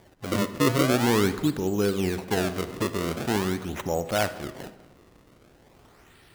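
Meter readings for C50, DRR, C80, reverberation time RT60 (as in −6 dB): 12.5 dB, 11.5 dB, 14.0 dB, 1.3 s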